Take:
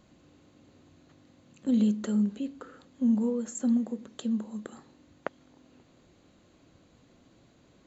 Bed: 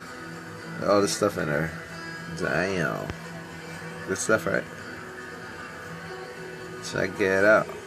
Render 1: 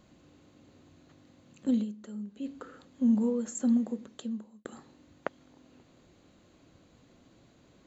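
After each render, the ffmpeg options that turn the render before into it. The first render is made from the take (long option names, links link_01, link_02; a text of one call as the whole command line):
ffmpeg -i in.wav -filter_complex "[0:a]asplit=4[link_01][link_02][link_03][link_04];[link_01]atrim=end=1.86,asetpts=PTS-STARTPTS,afade=type=out:start_time=1.7:duration=0.16:silence=0.211349[link_05];[link_02]atrim=start=1.86:end=2.34,asetpts=PTS-STARTPTS,volume=-13.5dB[link_06];[link_03]atrim=start=2.34:end=4.65,asetpts=PTS-STARTPTS,afade=type=in:duration=0.16:silence=0.211349,afade=type=out:start_time=1.61:duration=0.7[link_07];[link_04]atrim=start=4.65,asetpts=PTS-STARTPTS,afade=type=in:duration=0.004:curve=hsin[link_08];[link_05][link_06][link_07][link_08]concat=n=4:v=0:a=1" out.wav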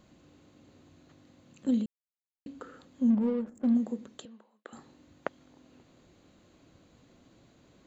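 ffmpeg -i in.wav -filter_complex "[0:a]asettb=1/sr,asplit=3[link_01][link_02][link_03];[link_01]atrim=end=3.104[link_04];[link_02]atrim=start=3.1:end=3.75,asetpts=PTS-STARTPTS,afade=type=in:duration=0.004:curve=qsin,afade=type=out:start_time=0.646:duration=0.004:curve=qsin,adynamicsmooth=sensitivity=6.5:basefreq=540[link_05];[link_03]atrim=start=3.746[link_06];[link_04][link_05]acrossfade=duration=0.004:curve1=hsin:curve2=qsin[link_07];[link_07][link_06]acrossfade=duration=0.004:curve1=qsin:curve2=hsin,asettb=1/sr,asplit=3[link_08][link_09][link_10];[link_08]atrim=end=4.254[link_11];[link_09]atrim=start=4.25:end=4.73,asetpts=PTS-STARTPTS,afade=type=in:duration=0.004:curve=qsin,afade=type=out:start_time=0.476:duration=0.004:curve=qsin,highpass=600,lowpass=3600[link_12];[link_10]atrim=start=4.726[link_13];[link_11][link_12]acrossfade=duration=0.004:curve1=hsin:curve2=qsin[link_14];[link_14][link_13]acrossfade=duration=0.004:curve1=qsin:curve2=hsin,asplit=3[link_15][link_16][link_17];[link_15]atrim=end=1.86,asetpts=PTS-STARTPTS,afade=type=out:start_time=1.856:duration=0.004:curve=hsin[link_18];[link_16]atrim=start=1.86:end=2.46,asetpts=PTS-STARTPTS,volume=0[link_19];[link_17]atrim=start=2.46,asetpts=PTS-STARTPTS,afade=type=in:duration=0.004:curve=hsin[link_20];[link_18][link_19][link_20]concat=n=3:v=0:a=1" out.wav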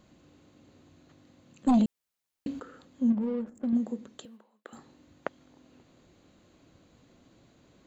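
ffmpeg -i in.wav -filter_complex "[0:a]asettb=1/sr,asplit=3[link_01][link_02][link_03];[link_01]atrim=end=1.674[link_04];[link_02]atrim=start=1.67:end=2.6,asetpts=PTS-STARTPTS,afade=type=in:duration=0.004:curve=qsin,afade=type=out:start_time=0.926:duration=0.004:curve=qsin,aeval=exprs='0.126*sin(PI/2*2*val(0)/0.126)':channel_layout=same[link_05];[link_03]atrim=start=2.596[link_06];[link_04][link_05]acrossfade=duration=0.004:curve1=hsin:curve2=qsin[link_07];[link_07][link_06]acrossfade=duration=0.004:curve1=qsin:curve2=hsin,asettb=1/sr,asplit=3[link_08][link_09][link_10];[link_08]atrim=end=3.124[link_11];[link_09]atrim=start=3.12:end=3.73,asetpts=PTS-STARTPTS,afade=type=in:duration=0.004:curve=qsin,afade=type=out:start_time=0.606:duration=0.004:curve=qsin,acompressor=threshold=-26dB:ratio=6:attack=3.2:release=140:knee=1:detection=peak[link_12];[link_10]atrim=start=3.726[link_13];[link_11][link_12]acrossfade=duration=0.004:curve1=hsin:curve2=qsin[link_14];[link_14][link_13]acrossfade=duration=0.004:curve1=qsin:curve2=hsin,asettb=1/sr,asplit=3[link_15][link_16][link_17];[link_15]atrim=end=4.234[link_18];[link_16]atrim=start=4.23:end=4.77,asetpts=PTS-STARTPTS,afade=type=in:duration=0.004:curve=qsin,afade=type=out:start_time=0.536:duration=0.004:curve=qsin,acrusher=bits=8:mode=log:mix=0:aa=0.000001[link_19];[link_17]atrim=start=4.766[link_20];[link_18][link_19]acrossfade=duration=0.004:curve1=hsin:curve2=qsin[link_21];[link_21][link_20]acrossfade=duration=0.004:curve1=qsin:curve2=hsin" out.wav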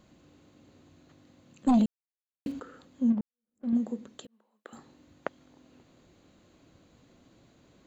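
ffmpeg -i in.wav -filter_complex "[0:a]asettb=1/sr,asplit=3[link_01][link_02][link_03];[link_01]atrim=end=1.774[link_04];[link_02]atrim=start=1.77:end=2.52,asetpts=PTS-STARTPTS,afade=type=in:duration=0.004:curve=qsin,afade=type=out:start_time=0.746:duration=0.004:curve=qsin,aeval=exprs='val(0)*gte(abs(val(0)),0.00398)':channel_layout=same[link_05];[link_03]atrim=start=2.516[link_06];[link_04][link_05]acrossfade=duration=0.004:curve1=hsin:curve2=qsin[link_07];[link_07][link_06]acrossfade=duration=0.004:curve1=qsin:curve2=hsin,asplit=3[link_08][link_09][link_10];[link_08]atrim=end=3.21,asetpts=PTS-STARTPTS,afade=type=out:start_time=3.206:duration=0.004:curve=hsin[link_11];[link_09]atrim=start=3.21:end=4.27,asetpts=PTS-STARTPTS,afade=type=in:duration=0.47:curve=exp,afade=type=out:start_time=1.056:duration=0.004:curve=hsin[link_12];[link_10]atrim=start=4.27,asetpts=PTS-STARTPTS,afade=type=in:duration=0.42[link_13];[link_11][link_12][link_13]concat=n=3:v=0:a=1" out.wav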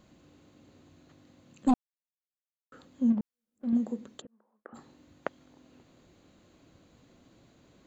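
ffmpeg -i in.wav -filter_complex "[0:a]asplit=3[link_01][link_02][link_03];[link_01]afade=type=out:start_time=4.2:duration=0.02[link_04];[link_02]lowpass=frequency=1700:width=0.5412,lowpass=frequency=1700:width=1.3066,afade=type=in:start_time=4.2:duration=0.02,afade=type=out:start_time=4.74:duration=0.02[link_05];[link_03]afade=type=in:start_time=4.74:duration=0.02[link_06];[link_04][link_05][link_06]amix=inputs=3:normalize=0,asplit=3[link_07][link_08][link_09];[link_07]atrim=end=1.74,asetpts=PTS-STARTPTS,afade=type=out:start_time=1.736:duration=0.004:curve=hsin[link_10];[link_08]atrim=start=1.74:end=2.72,asetpts=PTS-STARTPTS,volume=0[link_11];[link_09]atrim=start=2.72,asetpts=PTS-STARTPTS,afade=type=in:duration=0.004:curve=hsin[link_12];[link_10][link_11][link_12]concat=n=3:v=0:a=1" out.wav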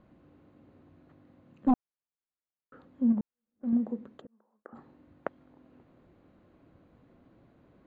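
ffmpeg -i in.wav -af "lowpass=1700" out.wav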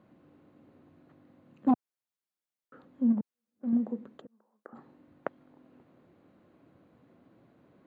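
ffmpeg -i in.wav -af "highpass=120" out.wav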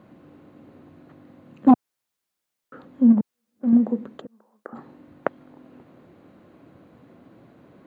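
ffmpeg -i in.wav -af "volume=10.5dB" out.wav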